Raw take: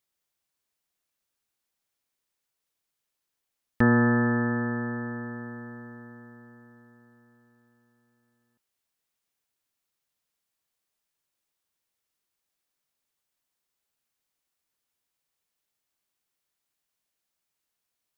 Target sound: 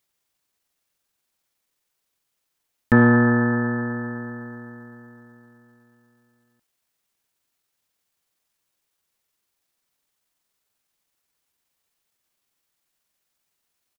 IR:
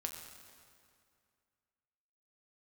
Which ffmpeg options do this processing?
-af "acontrast=26,atempo=1.3,volume=1.5dB"

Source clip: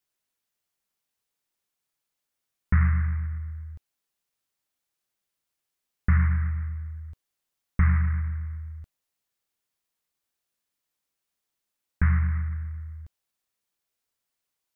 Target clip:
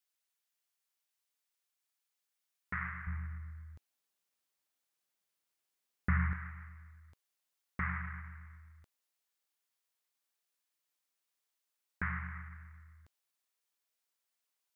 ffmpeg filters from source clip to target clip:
-af "asetnsamples=n=441:p=0,asendcmd='3.07 highpass f 210;6.33 highpass f 590',highpass=f=1.1k:p=1,volume=-2.5dB"

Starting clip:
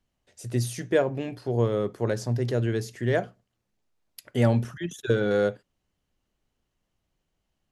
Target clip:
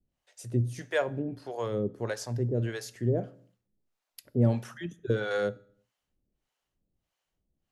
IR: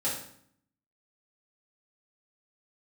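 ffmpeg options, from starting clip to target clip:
-filter_complex "[0:a]acrossover=split=540[a][b];[a]aeval=exprs='val(0)*(1-1/2+1/2*cos(2*PI*1.6*n/s))':c=same[c];[b]aeval=exprs='val(0)*(1-1/2-1/2*cos(2*PI*1.6*n/s))':c=same[d];[c][d]amix=inputs=2:normalize=0,asplit=2[e][f];[1:a]atrim=start_sample=2205,afade=t=out:st=0.4:d=0.01,atrim=end_sample=18081[g];[f][g]afir=irnorm=-1:irlink=0,volume=-23.5dB[h];[e][h]amix=inputs=2:normalize=0"

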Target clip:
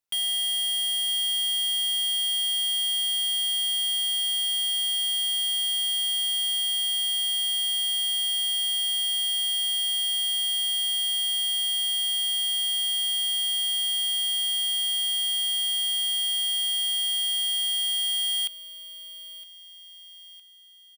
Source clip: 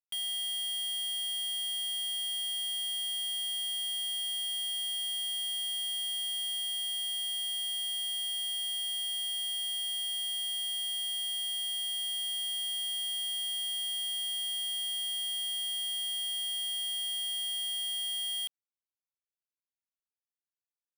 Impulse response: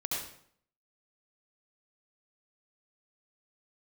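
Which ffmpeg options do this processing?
-af "aecho=1:1:962|1924|2886|3848:0.126|0.0655|0.034|0.0177,volume=8dB"

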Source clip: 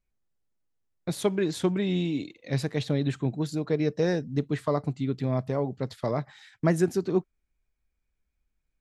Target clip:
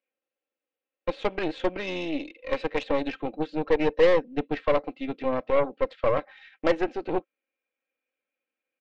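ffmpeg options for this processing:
-af "highpass=f=310:w=0.5412,highpass=f=310:w=1.3066,equalizer=f=530:t=q:w=4:g=8,equalizer=f=950:t=q:w=4:g=-5,equalizer=f=2.6k:t=q:w=4:g=7,lowpass=f=3.3k:w=0.5412,lowpass=f=3.3k:w=1.3066,aecho=1:1:3.8:0.56,aeval=exprs='0.335*(cos(1*acos(clip(val(0)/0.335,-1,1)))-cos(1*PI/2))+0.0422*(cos(8*acos(clip(val(0)/0.335,-1,1)))-cos(8*PI/2))':c=same"

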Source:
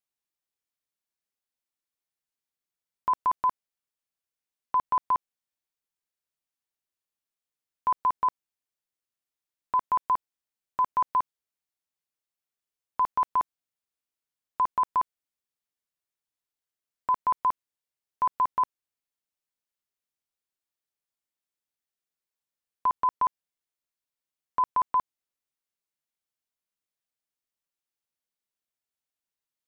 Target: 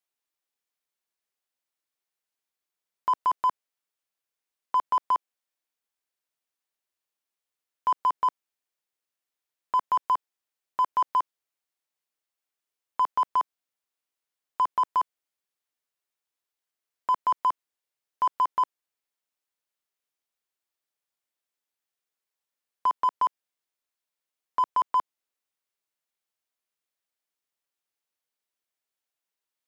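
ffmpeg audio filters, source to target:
-filter_complex "[0:a]bass=f=250:g=-10,treble=f=4k:g=-2,asplit=2[a][b];[b]asoftclip=type=tanh:threshold=-33dB,volume=-6.5dB[c];[a][c]amix=inputs=2:normalize=0"

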